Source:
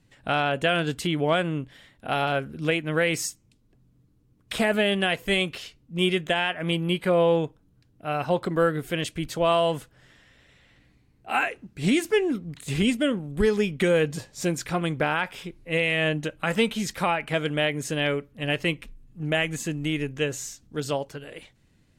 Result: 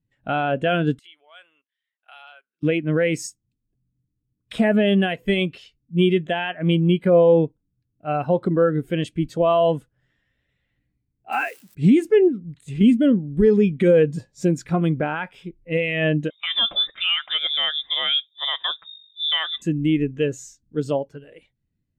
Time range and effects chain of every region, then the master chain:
0.99–2.63 s: dynamic bell 1.8 kHz, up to -4 dB, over -36 dBFS, Q 1.1 + level held to a coarse grid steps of 16 dB + high-pass 1.4 kHz
11.32–11.75 s: zero-crossing glitches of -26.5 dBFS + bass shelf 170 Hz -8.5 dB
12.28–12.81 s: peaking EQ 230 Hz -3.5 dB 1.2 oct + compression 3:1, threshold -31 dBFS
16.30–19.62 s: dynamic bell 1 kHz, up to +5 dB, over -38 dBFS, Q 0.73 + frequency inversion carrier 3.7 kHz
whole clip: dynamic bell 240 Hz, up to +4 dB, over -39 dBFS, Q 1.3; loudness maximiser +14 dB; spectral contrast expander 1.5:1; trim -6 dB

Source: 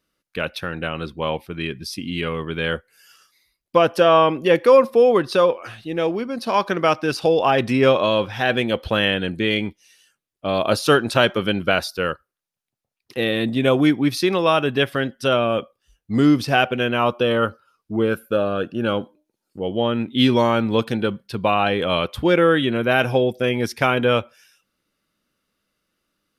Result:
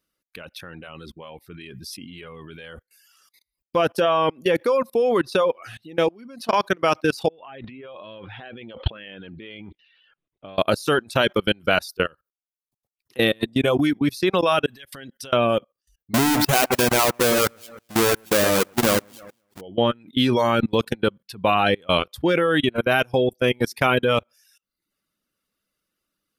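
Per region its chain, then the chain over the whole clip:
7.28–10.58 s: steep low-pass 3.7 kHz 48 dB/octave + compressor with a negative ratio -28 dBFS
14.66–15.33 s: treble shelf 2.1 kHz +8 dB + compression 8:1, threshold -31 dBFS
16.14–19.61 s: square wave that keeps the level + bass shelf 180 Hz -6.5 dB + echo whose repeats swap between lows and highs 106 ms, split 2.4 kHz, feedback 51%, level -10 dB
whole clip: level held to a coarse grid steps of 21 dB; treble shelf 8.1 kHz +8.5 dB; reverb removal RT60 0.59 s; trim +3.5 dB

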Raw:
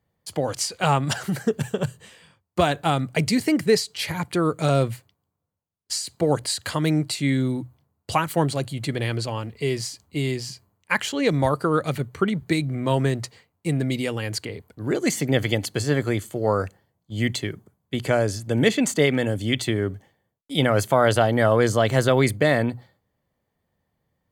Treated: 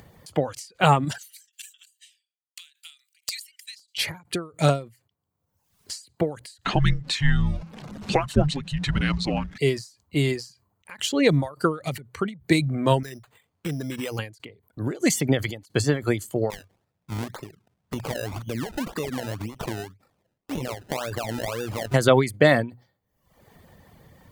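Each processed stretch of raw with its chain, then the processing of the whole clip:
1.18–3.98 s: expander -52 dBFS + inverse Chebyshev high-pass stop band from 460 Hz, stop band 80 dB + integer overflow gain 13.5 dB
6.65–9.58 s: jump at every zero crossing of -34 dBFS + low-pass 5.1 kHz + frequency shift -290 Hz
13.03–14.19 s: compression 8:1, threshold -28 dBFS + careless resampling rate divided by 8×, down none, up hold
16.50–21.94 s: compression 5:1, threshold -29 dBFS + decimation with a swept rate 27× 1.9 Hz
whole clip: reverb removal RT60 0.69 s; upward compressor, threshold -38 dBFS; endings held to a fixed fall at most 170 dB/s; trim +3.5 dB

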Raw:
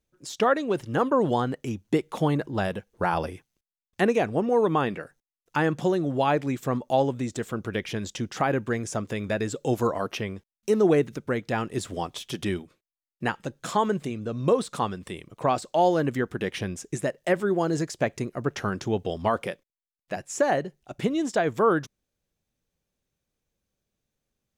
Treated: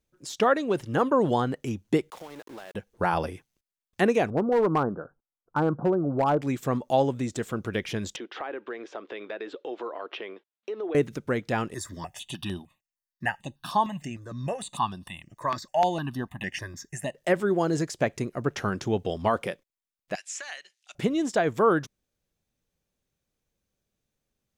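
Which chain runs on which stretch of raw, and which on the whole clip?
2.10–2.75 s: high-pass 410 Hz + compression, threshold -39 dBFS + small samples zeroed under -45.5 dBFS
4.30–6.42 s: steep low-pass 1.5 kHz 96 dB/octave + hard clipper -17 dBFS
8.16–10.95 s: Chebyshev band-pass 340–3600 Hz, order 3 + compression 3:1, threshold -33 dBFS
11.74–17.15 s: bass shelf 310 Hz -7.5 dB + comb 1.1 ms, depth 76% + stepped phaser 6.6 Hz 770–7300 Hz
20.15–20.95 s: Butterworth band-pass 4.4 kHz, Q 0.7 + three bands compressed up and down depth 70%
whole clip: none

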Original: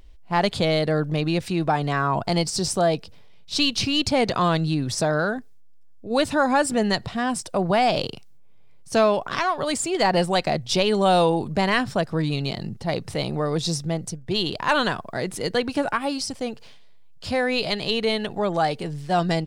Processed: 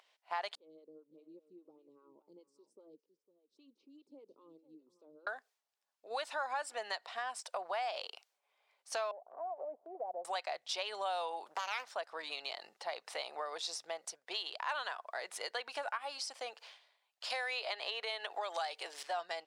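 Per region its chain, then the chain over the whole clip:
0.55–5.27 s: inverse Chebyshev low-pass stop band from 650 Hz + delay 506 ms -15 dB + lamp-driven phase shifter 5 Hz
9.11–10.25 s: Chebyshev low-pass 700 Hz, order 4 + transient shaper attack +2 dB, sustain -5 dB + compression 1.5:1, threshold -35 dBFS
11.46–11.92 s: treble shelf 9 kHz +6.5 dB + loudspeaker Doppler distortion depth 0.91 ms
17.30–19.03 s: high-pass 250 Hz 24 dB/octave + three bands compressed up and down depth 100%
whole clip: high-pass 660 Hz 24 dB/octave; treble shelf 6.7 kHz -9.5 dB; compression 3:1, threshold -37 dBFS; trim -2 dB

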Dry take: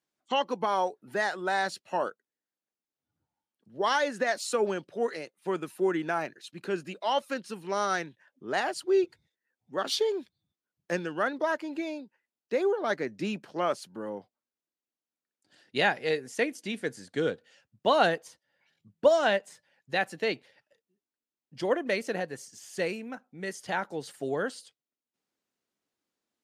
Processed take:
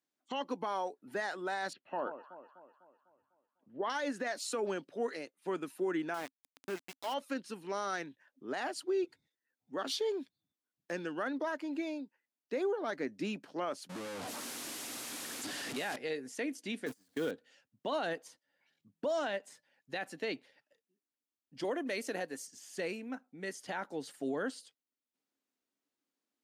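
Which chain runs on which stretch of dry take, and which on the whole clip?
1.73–3.90 s: low-pass 2.9 kHz 24 dB/octave + echo whose repeats swap between lows and highs 125 ms, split 1.1 kHz, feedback 70%, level -12 dB
6.14–7.14 s: small samples zeroed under -33 dBFS + compression 1.5:1, threshold -34 dBFS
13.89–15.96 s: one-bit delta coder 64 kbps, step -25.5 dBFS + expander -29 dBFS
16.86–17.31 s: jump at every zero crossing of -35 dBFS + gate -35 dBFS, range -32 dB + treble shelf 7.4 kHz +6.5 dB
21.64–22.47 s: high-pass 180 Hz + treble shelf 6.3 kHz +8.5 dB
whole clip: high-pass 210 Hz 6 dB/octave; peaking EQ 270 Hz +9 dB 0.33 oct; peak limiter -22 dBFS; trim -4.5 dB

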